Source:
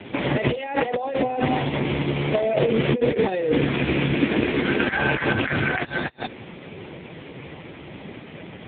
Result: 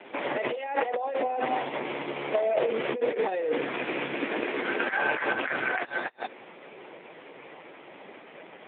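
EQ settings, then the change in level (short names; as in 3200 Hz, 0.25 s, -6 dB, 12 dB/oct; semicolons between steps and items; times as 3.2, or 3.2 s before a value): BPF 570–3300 Hz; high shelf 2000 Hz -8.5 dB; 0.0 dB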